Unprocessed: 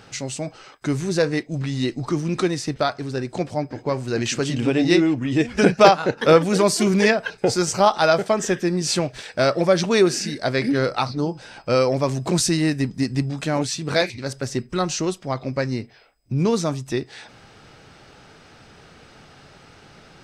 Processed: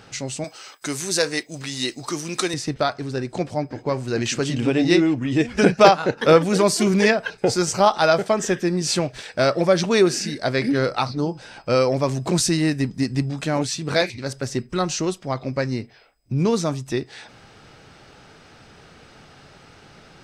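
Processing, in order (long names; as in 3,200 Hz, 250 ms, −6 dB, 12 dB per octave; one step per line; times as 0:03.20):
0:00.44–0:02.54: RIAA equalisation recording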